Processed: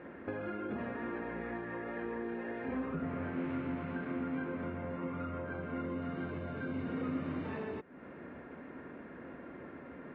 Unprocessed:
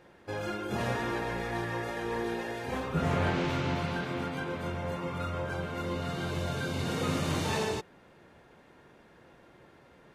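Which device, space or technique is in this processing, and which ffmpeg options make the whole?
bass amplifier: -af "acompressor=threshold=-46dB:ratio=6,highpass=66,equalizer=f=120:t=q:w=4:g=-9,equalizer=f=260:t=q:w=4:g=10,equalizer=f=840:t=q:w=4:g=-6,lowpass=f=2.2k:w=0.5412,lowpass=f=2.2k:w=1.3066,volume=8dB"

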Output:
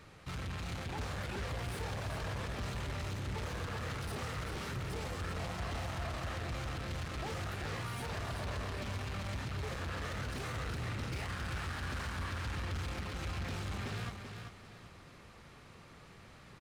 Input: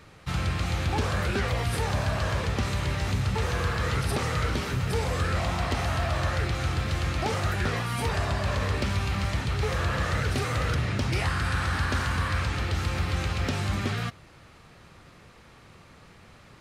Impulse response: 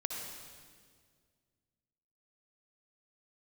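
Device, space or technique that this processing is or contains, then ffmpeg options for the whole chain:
saturation between pre-emphasis and de-emphasis: -filter_complex "[0:a]asettb=1/sr,asplit=3[a][b][c];[a]atrim=end=1.774[d];[b]atrim=start=1.77:end=2.24,asetpts=PTS-STARTPTS,afade=t=in:d=0.004:c=qsin,afade=t=out:st=0.466:d=0.004:c=qsin,highpass=f=45:w=0.5412,highpass=f=45:w=1.3066[e];[c]atrim=start=2.236[f];[d][e]acrossfade=d=0.004:c1=hsin:c2=qsin[g];[g][f]acrossfade=d=0.004:c1=qsin:c2=hsin,highshelf=f=6k:g=12,asoftclip=type=tanh:threshold=-33dB,highshelf=f=6k:g=-12,aecho=1:1:388|776|1164|1552:0.473|0.156|0.0515|0.017,volume=-4.5dB"

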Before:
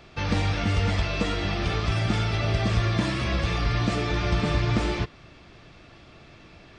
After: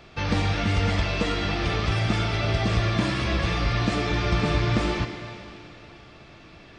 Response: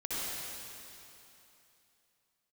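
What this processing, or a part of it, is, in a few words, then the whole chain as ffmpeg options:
filtered reverb send: -filter_complex "[0:a]asplit=2[a][b];[b]highpass=f=250:p=1,lowpass=7k[c];[1:a]atrim=start_sample=2205[d];[c][d]afir=irnorm=-1:irlink=0,volume=-11dB[e];[a][e]amix=inputs=2:normalize=0"

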